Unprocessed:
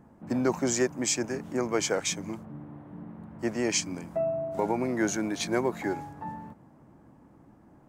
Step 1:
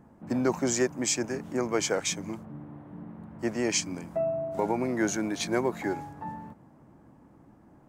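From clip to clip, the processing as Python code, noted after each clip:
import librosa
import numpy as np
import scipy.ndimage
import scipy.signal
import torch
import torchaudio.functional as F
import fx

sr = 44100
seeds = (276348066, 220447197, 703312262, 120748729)

y = x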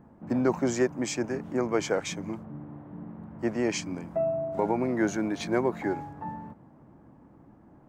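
y = fx.peak_eq(x, sr, hz=11000.0, db=-11.5, octaves=2.5)
y = y * librosa.db_to_amplitude(1.5)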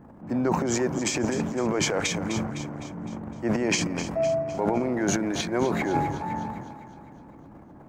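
y = fx.transient(x, sr, attack_db=-4, sustain_db=12)
y = fx.echo_split(y, sr, split_hz=560.0, low_ms=117, high_ms=255, feedback_pct=52, wet_db=-13)
y = fx.rider(y, sr, range_db=4, speed_s=0.5)
y = y * librosa.db_to_amplitude(1.5)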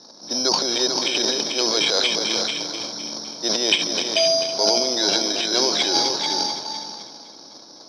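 y = x + 10.0 ** (-6.0 / 20.0) * np.pad(x, (int(440 * sr / 1000.0), 0))[:len(x)]
y = (np.kron(scipy.signal.resample_poly(y, 1, 8), np.eye(8)[0]) * 8)[:len(y)]
y = fx.cabinet(y, sr, low_hz=480.0, low_slope=12, high_hz=4300.0, hz=(810.0, 1200.0, 1900.0, 2800.0, 3900.0), db=(-5, -4, -8, 4, 8))
y = y * librosa.db_to_amplitude(5.5)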